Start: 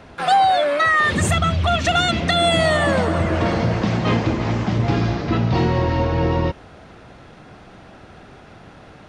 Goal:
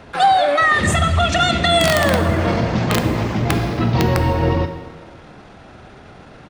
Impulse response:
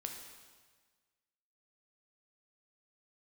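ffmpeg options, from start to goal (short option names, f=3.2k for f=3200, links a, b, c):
-filter_complex "[0:a]atempo=1.4,aeval=exprs='(mod(2.66*val(0)+1,2)-1)/2.66':c=same,asplit=2[a][b];[1:a]atrim=start_sample=2205[c];[b][c]afir=irnorm=-1:irlink=0,volume=3dB[d];[a][d]amix=inputs=2:normalize=0,volume=-4dB"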